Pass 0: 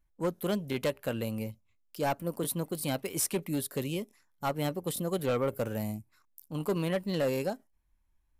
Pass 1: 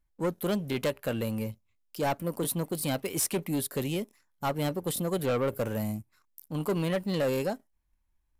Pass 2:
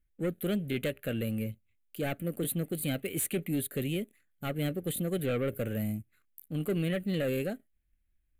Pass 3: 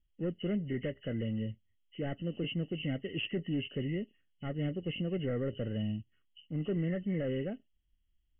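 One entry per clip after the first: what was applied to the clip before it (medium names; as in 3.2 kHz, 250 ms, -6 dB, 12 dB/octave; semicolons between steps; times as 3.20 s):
waveshaping leveller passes 1
static phaser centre 2.3 kHz, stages 4
knee-point frequency compression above 1.8 kHz 4:1; tilt shelf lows +5.5 dB, about 790 Hz; trim -6.5 dB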